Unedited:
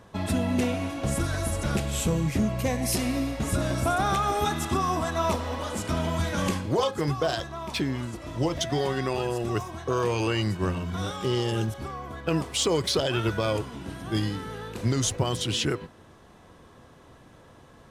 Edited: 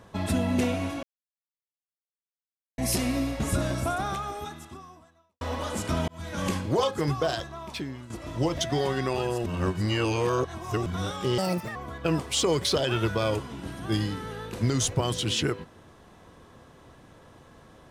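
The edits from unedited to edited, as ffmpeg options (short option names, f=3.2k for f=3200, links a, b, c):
-filter_complex "[0:a]asplit=10[a][b][c][d][e][f][g][h][i][j];[a]atrim=end=1.03,asetpts=PTS-STARTPTS,afade=t=out:st=1.026:d=0.004:c=hsin[k];[b]atrim=start=1.03:end=2.78,asetpts=PTS-STARTPTS,volume=0[l];[c]atrim=start=2.78:end=5.41,asetpts=PTS-STARTPTS,afade=t=in:d=0.004:c=hsin,afade=t=out:st=0.78:d=1.85:c=qua[m];[d]atrim=start=5.41:end=6.08,asetpts=PTS-STARTPTS,afade=t=in:d=0.004:c=hsin,afade=t=out:st=0.666:d=0.004:c=hsin[n];[e]atrim=start=6.08:end=8.1,asetpts=PTS-STARTPTS,afade=t=in:d=0.49,afade=t=out:st=1.09:d=0.93:silence=0.237137[o];[f]atrim=start=8.1:end=9.462,asetpts=PTS-STARTPTS,afade=t=in:d=0.004:c=hsin:silence=0.237137[p];[g]atrim=start=9.458:end=10.862,asetpts=PTS-STARTPTS,areverse[q];[h]atrim=start=10.858:end=11.384[r];[i]atrim=start=11.38:end=11.98,asetpts=PTS-STARTPTS,asetrate=70560,aresample=44100[s];[j]atrim=start=11.976[t];[k][l][m][n][o][p]concat=n=6:v=0:a=1[u];[u][q]acrossfade=d=0.004:c1=hsin:c2=hsin[v];[v][r]acrossfade=d=0.004:c1=hsin:c2=hsin[w];[w][s]acrossfade=d=0.004:c1=hsin:c2=hsin[x];[x][t]acrossfade=d=0.004:c1=hsin:c2=hsin"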